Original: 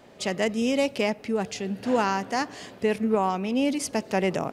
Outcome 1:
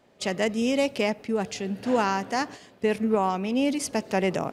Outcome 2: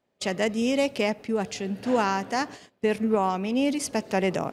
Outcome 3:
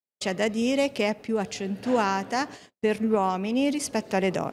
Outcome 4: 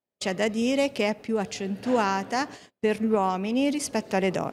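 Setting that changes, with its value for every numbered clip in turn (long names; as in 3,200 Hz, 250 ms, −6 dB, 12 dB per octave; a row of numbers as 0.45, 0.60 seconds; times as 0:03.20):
noise gate, range: −9, −24, −54, −40 decibels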